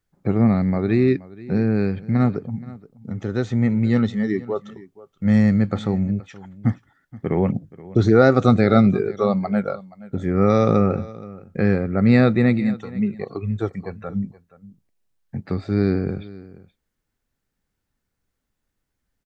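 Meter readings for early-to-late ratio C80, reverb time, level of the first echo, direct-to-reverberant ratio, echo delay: none, none, -19.5 dB, none, 0.475 s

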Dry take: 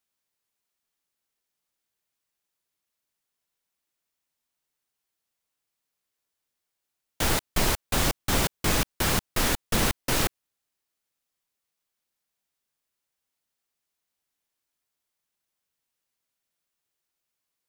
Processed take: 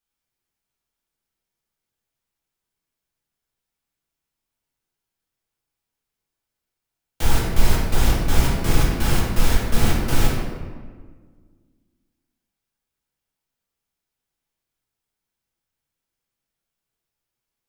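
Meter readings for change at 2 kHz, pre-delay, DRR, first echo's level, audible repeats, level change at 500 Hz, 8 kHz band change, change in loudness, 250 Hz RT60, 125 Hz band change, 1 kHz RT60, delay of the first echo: +0.5 dB, 3 ms, -4.5 dB, none, none, +2.5 dB, -2.0 dB, +3.0 dB, 2.3 s, +9.0 dB, 1.5 s, none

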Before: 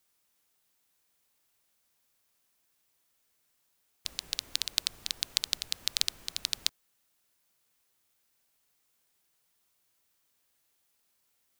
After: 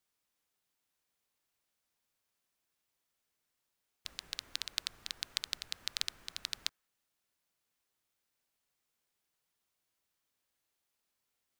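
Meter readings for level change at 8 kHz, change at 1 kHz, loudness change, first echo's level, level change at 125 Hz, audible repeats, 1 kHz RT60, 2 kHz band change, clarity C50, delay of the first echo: -9.0 dB, -2.5 dB, -7.0 dB, none, -6.5 dB, none, none, -3.5 dB, none, none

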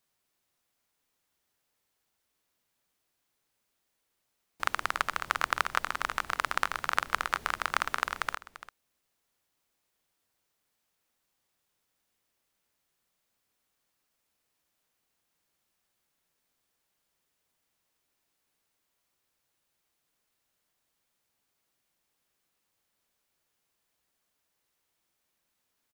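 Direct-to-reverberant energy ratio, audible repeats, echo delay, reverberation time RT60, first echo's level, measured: none, 1, 0.342 s, none, -15.0 dB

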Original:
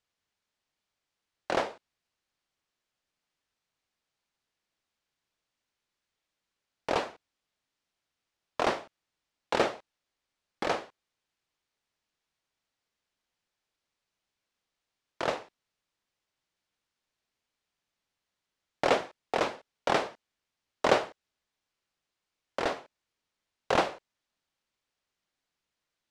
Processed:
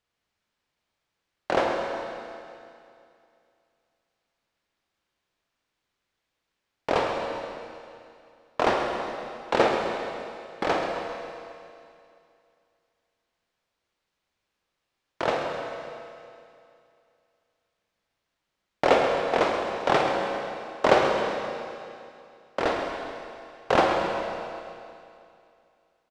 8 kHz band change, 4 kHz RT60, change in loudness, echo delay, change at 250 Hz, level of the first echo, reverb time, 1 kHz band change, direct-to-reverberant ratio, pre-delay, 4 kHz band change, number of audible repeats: +1.5 dB, 2.5 s, +4.5 dB, 0.132 s, +7.0 dB, -10.5 dB, 2.5 s, +7.0 dB, 0.5 dB, 34 ms, +4.0 dB, 1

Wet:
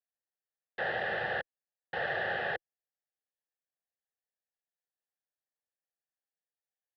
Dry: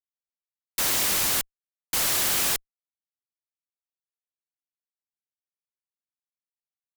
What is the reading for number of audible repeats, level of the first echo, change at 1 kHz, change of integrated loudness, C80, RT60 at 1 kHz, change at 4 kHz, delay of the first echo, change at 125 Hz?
none, none, -1.5 dB, -11.5 dB, none, none, -17.0 dB, none, -6.5 dB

